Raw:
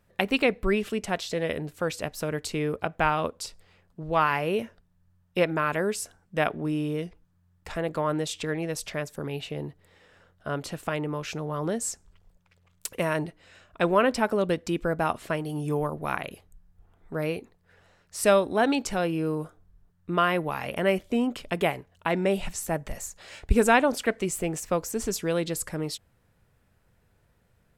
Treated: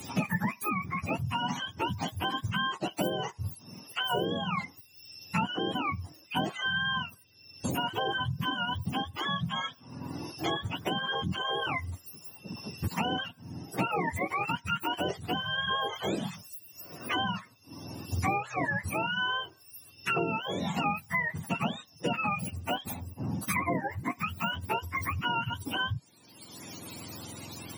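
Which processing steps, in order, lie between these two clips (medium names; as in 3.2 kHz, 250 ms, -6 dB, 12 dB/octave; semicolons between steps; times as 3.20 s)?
spectrum inverted on a logarithmic axis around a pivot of 690 Hz; treble shelf 3.7 kHz +11 dB; three bands compressed up and down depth 100%; trim -4 dB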